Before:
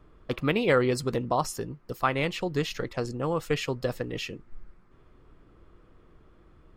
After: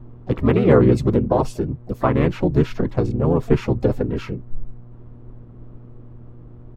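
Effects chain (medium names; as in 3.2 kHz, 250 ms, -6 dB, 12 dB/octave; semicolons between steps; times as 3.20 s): harmony voices -12 st -4 dB, -3 st -1 dB, +7 st -18 dB; mains buzz 120 Hz, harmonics 36, -52 dBFS -9 dB/octave; tilt shelf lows +9 dB, about 1.1 kHz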